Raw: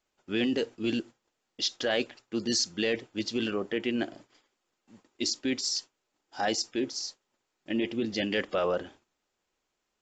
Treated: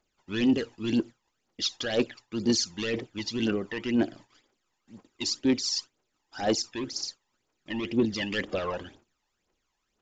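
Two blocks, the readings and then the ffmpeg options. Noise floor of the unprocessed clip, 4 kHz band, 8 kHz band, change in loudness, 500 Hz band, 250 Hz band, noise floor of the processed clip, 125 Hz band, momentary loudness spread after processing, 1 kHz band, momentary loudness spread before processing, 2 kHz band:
−82 dBFS, 0.0 dB, 0.0 dB, +1.5 dB, 0.0 dB, +3.5 dB, −79 dBFS, +5.5 dB, 9 LU, −1.5 dB, 7 LU, −0.5 dB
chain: -af "asoftclip=type=tanh:threshold=-23dB,aphaser=in_gain=1:out_gain=1:delay=1.2:decay=0.65:speed=2:type=triangular,aresample=16000,aresample=44100"

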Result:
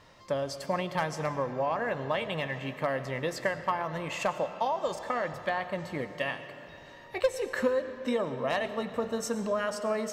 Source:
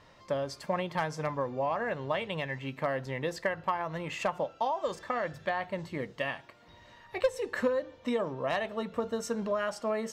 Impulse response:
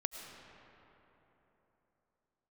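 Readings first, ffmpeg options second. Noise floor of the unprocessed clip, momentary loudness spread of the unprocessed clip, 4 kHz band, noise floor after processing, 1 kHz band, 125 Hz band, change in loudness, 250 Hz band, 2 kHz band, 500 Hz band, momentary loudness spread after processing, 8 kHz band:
−57 dBFS, 4 LU, +2.5 dB, −50 dBFS, +1.5 dB, +1.0 dB, +1.5 dB, +1.5 dB, +1.5 dB, +1.5 dB, 5 LU, +4.0 dB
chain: -filter_complex "[0:a]asplit=2[link_01][link_02];[link_02]highshelf=frequency=4700:gain=9.5[link_03];[1:a]atrim=start_sample=2205[link_04];[link_03][link_04]afir=irnorm=-1:irlink=0,volume=-2.5dB[link_05];[link_01][link_05]amix=inputs=2:normalize=0,volume=-3.5dB"

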